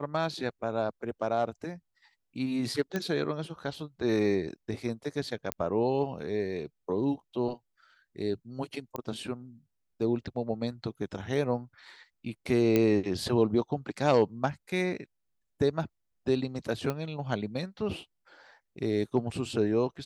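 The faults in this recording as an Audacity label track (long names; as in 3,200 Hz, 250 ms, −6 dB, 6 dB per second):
2.960000	2.960000	click −17 dBFS
5.520000	5.520000	click −12 dBFS
8.960000	8.960000	click −21 dBFS
12.760000	12.760000	click −12 dBFS
16.900000	16.900000	click −18 dBFS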